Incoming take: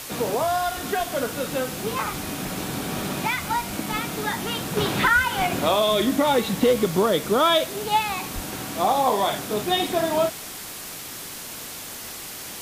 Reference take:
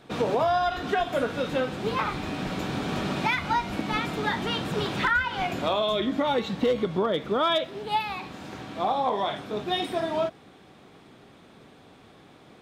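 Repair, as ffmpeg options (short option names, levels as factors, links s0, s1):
-filter_complex "[0:a]asplit=3[s0][s1][s2];[s0]afade=t=out:st=8.34:d=0.02[s3];[s1]highpass=f=140:w=0.5412,highpass=f=140:w=1.3066,afade=t=in:st=8.34:d=0.02,afade=t=out:st=8.46:d=0.02[s4];[s2]afade=t=in:st=8.46:d=0.02[s5];[s3][s4][s5]amix=inputs=3:normalize=0,afwtdn=0.018,asetnsamples=n=441:p=0,asendcmd='4.77 volume volume -5dB',volume=1"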